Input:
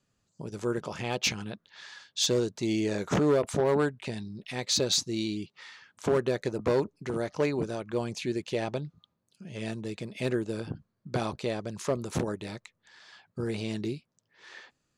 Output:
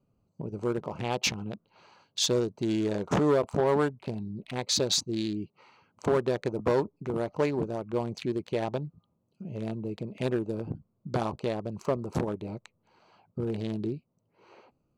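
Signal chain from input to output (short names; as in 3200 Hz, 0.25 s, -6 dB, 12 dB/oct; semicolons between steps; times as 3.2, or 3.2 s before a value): Wiener smoothing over 25 samples; dynamic EQ 950 Hz, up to +5 dB, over -44 dBFS, Q 1.6; in parallel at +2 dB: compressor, threshold -41 dBFS, peak gain reduction 19 dB; on the sum: gain -1.5 dB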